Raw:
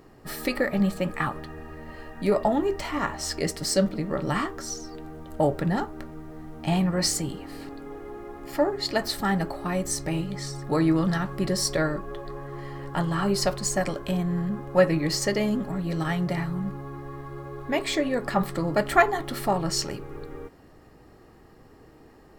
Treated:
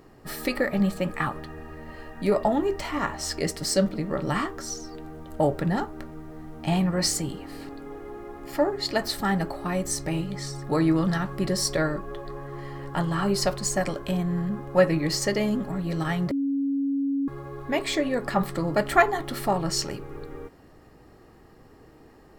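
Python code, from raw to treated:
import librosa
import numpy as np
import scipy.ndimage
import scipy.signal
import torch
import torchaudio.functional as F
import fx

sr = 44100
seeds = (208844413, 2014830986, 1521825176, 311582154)

y = fx.edit(x, sr, fx.bleep(start_s=16.31, length_s=0.97, hz=277.0, db=-22.5), tone=tone)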